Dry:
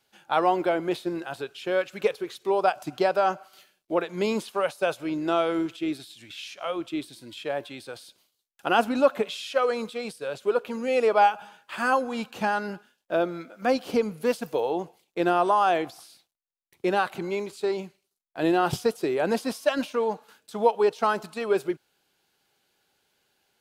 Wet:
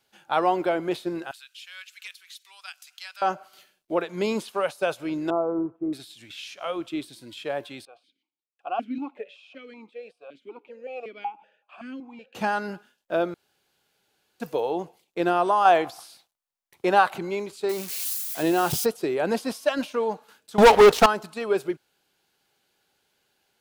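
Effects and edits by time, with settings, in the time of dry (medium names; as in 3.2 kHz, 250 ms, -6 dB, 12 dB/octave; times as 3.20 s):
1.31–3.22 s: Bessel high-pass 2.8 kHz, order 4
5.30–5.93 s: elliptic low-pass 1.1 kHz, stop band 80 dB
7.85–12.35 s: stepped vowel filter 5.3 Hz
13.34–14.40 s: room tone
15.65–17.18 s: FFT filter 330 Hz 0 dB, 870 Hz +8 dB, 2.2 kHz +3 dB
17.69–18.86 s: zero-crossing glitches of -23 dBFS
20.58–21.06 s: waveshaping leveller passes 5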